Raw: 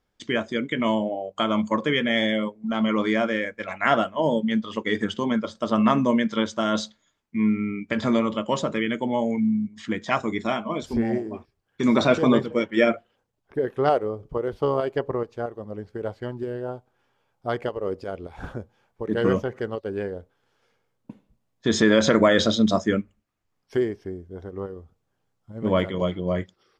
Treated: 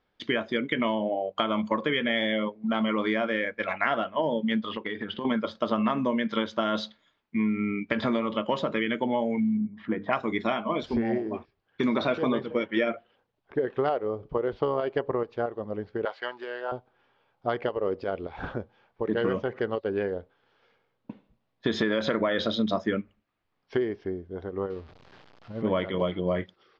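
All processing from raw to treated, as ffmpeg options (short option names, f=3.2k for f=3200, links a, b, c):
-filter_complex "[0:a]asettb=1/sr,asplit=3[a][b][c];[a]atrim=end=4.694[d];[b]atrim=start=4.69:end=5.25,asetpts=PTS-STARTPTS,afade=t=in:d=0.004:c=qsin,afade=t=out:st=0.556:d=0.004:c=qsin,lowpass=f=4.5k:w=0.5412,lowpass=f=4.5k:w=1.3066,acompressor=threshold=-30dB:ratio=12:attack=3.2:release=140:knee=1:detection=peak[e];[c]atrim=start=5.246[f];[d][e]acrossfade=d=0.004:c1=hsin:c2=qsin[g];[g][f]acrossfade=d=0.004:c1=qsin:c2=hsin,asettb=1/sr,asplit=3[h][i][j];[h]atrim=end=9.574[k];[i]atrim=start=9.57:end=10.13,asetpts=PTS-STARTPTS,afade=t=in:d=0.004:c=qsin,afade=t=out:st=0.556:d=0.004:c=qsin,lowpass=1.3k,bandreject=f=50:t=h:w=6,bandreject=f=100:t=h:w=6,bandreject=f=150:t=h:w=6,bandreject=f=200:t=h:w=6,bandreject=f=250:t=h:w=6,bandreject=f=300:t=h:w=6,bandreject=f=350:t=h:w=6,bandreject=f=400:t=h:w=6,bandreject=f=450:t=h:w=6[l];[j]atrim=start=10.126[m];[k][l]acrossfade=d=0.004:c1=hsin:c2=qsin[n];[n][m]acrossfade=d=0.004:c1=qsin:c2=hsin,asettb=1/sr,asplit=3[o][p][q];[o]atrim=end=16.054[r];[p]atrim=start=16.05:end=16.72,asetpts=PTS-STARTPTS,afade=t=in:d=0.004:c=qsin,afade=t=out:st=0.666:d=0.004:c=qsin,highpass=1k,acontrast=57[s];[q]atrim=start=16.716[t];[r][s]acrossfade=d=0.004:c1=hsin:c2=qsin[u];[u][t]acrossfade=d=0.004:c1=qsin:c2=hsin,asettb=1/sr,asplit=3[v][w][x];[v]atrim=end=24.704[y];[w]atrim=start=24.7:end=25.62,asetpts=PTS-STARTPTS,afade=t=in:d=0.004:c=qsin,afade=t=out:st=0.916:d=0.004:c=qsin,aeval=exprs='val(0)+0.5*0.00447*sgn(val(0))':c=same,equalizer=f=4.8k:w=2.8:g=4[z];[x]atrim=start=25.616[aa];[y][z]acrossfade=d=0.004:c1=hsin:c2=qsin[ab];[ab][aa]acrossfade=d=0.004:c1=qsin:c2=hsin,lowpass=f=4.2k:w=0.5412,lowpass=f=4.2k:w=1.3066,lowshelf=f=180:g=-8,acompressor=threshold=-26dB:ratio=6,volume=3.5dB"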